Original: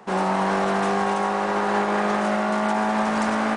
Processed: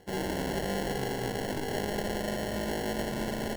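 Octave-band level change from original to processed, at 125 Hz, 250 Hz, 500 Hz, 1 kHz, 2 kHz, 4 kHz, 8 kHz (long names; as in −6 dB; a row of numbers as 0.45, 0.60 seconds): −4.5, −9.5, −8.0, −16.0, −11.0, −3.0, −2.5 decibels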